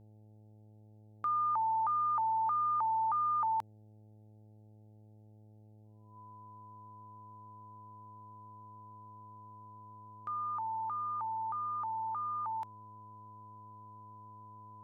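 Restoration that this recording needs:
hum removal 106.9 Hz, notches 8
notch filter 1,000 Hz, Q 30

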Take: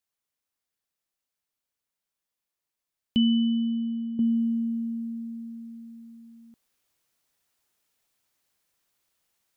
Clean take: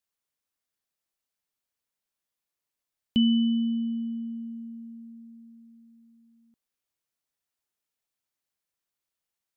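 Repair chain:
level 0 dB, from 0:04.19 −11.5 dB

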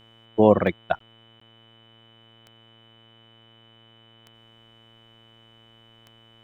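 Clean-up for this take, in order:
click removal
hum removal 113.7 Hz, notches 34
notch filter 3,000 Hz, Q 30
repair the gap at 0:00.99/0:01.40, 14 ms

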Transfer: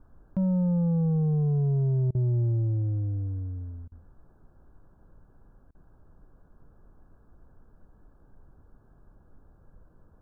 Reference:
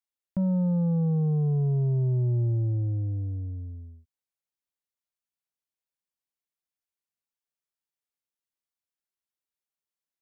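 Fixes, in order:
repair the gap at 0:02.11/0:03.88/0:05.71, 37 ms
noise reduction from a noise print 30 dB

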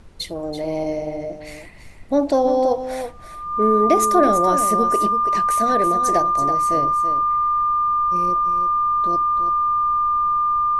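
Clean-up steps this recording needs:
notch filter 1,200 Hz, Q 30
noise reduction from a noise print 30 dB
echo removal 331 ms −9.5 dB

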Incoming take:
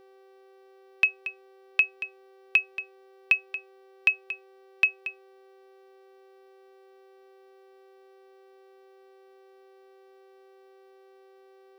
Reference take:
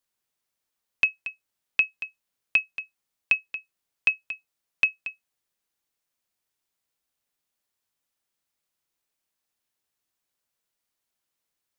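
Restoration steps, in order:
hum removal 386.2 Hz, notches 15
notch filter 510 Hz, Q 30

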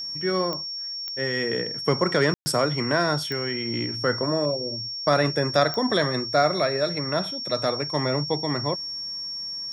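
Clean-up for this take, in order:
click removal
notch filter 5,500 Hz, Q 30
ambience match 0:02.34–0:02.46

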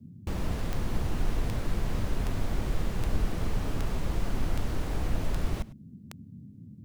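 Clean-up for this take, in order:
click removal
noise reduction from a noise print 25 dB
echo removal 102 ms −19 dB

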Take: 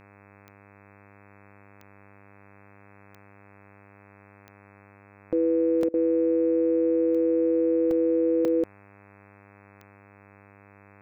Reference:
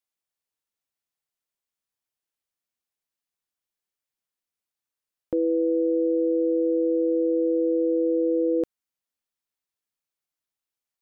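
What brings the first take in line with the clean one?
click removal
hum removal 100.2 Hz, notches 26
repair the gap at 0:01.51/0:05.83/0:07.91/0:08.45, 2.8 ms
repair the gap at 0:05.89, 47 ms

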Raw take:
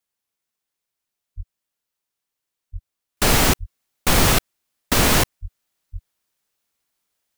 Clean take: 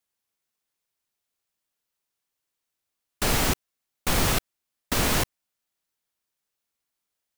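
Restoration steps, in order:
high-pass at the plosives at 0:01.36/0:02.72/0:03.59/0:05.41/0:05.92
level 0 dB, from 0:03.17 −7 dB

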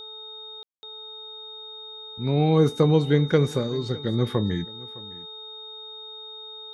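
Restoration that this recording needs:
hum removal 434.3 Hz, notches 3
notch filter 3,700 Hz, Q 30
ambience match 0:00.63–0:00.83
echo removal 610 ms −21 dB

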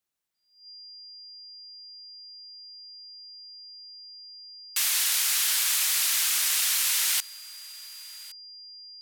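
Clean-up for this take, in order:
notch filter 4,800 Hz, Q 30
echo removal 1,115 ms −21.5 dB

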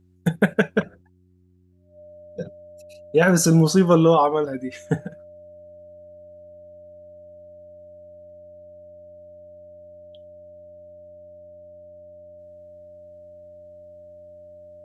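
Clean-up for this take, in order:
hum removal 90.6 Hz, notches 4
notch filter 600 Hz, Q 30

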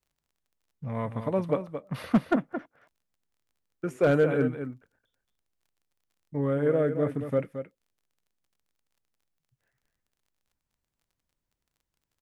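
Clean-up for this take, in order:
clipped peaks rebuilt −14 dBFS
click removal
echo removal 222 ms −9.5 dB

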